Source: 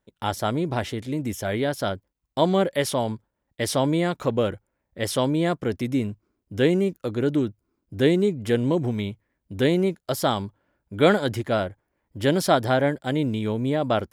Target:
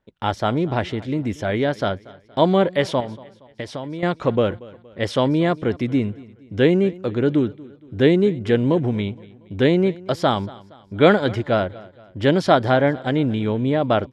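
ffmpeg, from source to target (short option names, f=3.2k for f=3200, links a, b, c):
-filter_complex "[0:a]asettb=1/sr,asplit=3[a][b][c];[a]atrim=end=3.004[d];[b]atrim=start=3:end=4.03,asetpts=PTS-STARTPTS,afade=t=in:d=0.004:c=qsin,afade=t=out:st=1.026:d=0.004:c=qsin,acompressor=threshold=-32dB:ratio=6[e];[c]atrim=start=4.026[f];[d][e]acrossfade=d=0.004:c1=hsin:c2=qsin[g];[g][f]acrossfade=d=0.004:c1=qsin:c2=hsin,lowpass=3.9k,aecho=1:1:234|468|702:0.0891|0.0392|0.0173,volume=4dB"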